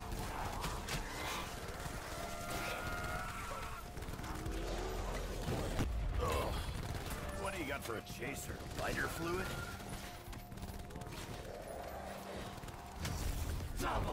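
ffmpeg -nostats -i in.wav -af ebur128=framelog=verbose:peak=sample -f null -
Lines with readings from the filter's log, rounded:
Integrated loudness:
  I:         -42.3 LUFS
  Threshold: -52.3 LUFS
Loudness range:
  LRA:         5.2 LU
  Threshold: -62.3 LUFS
  LRA low:   -45.8 LUFS
  LRA high:  -40.6 LUFS
Sample peak:
  Peak:      -24.3 dBFS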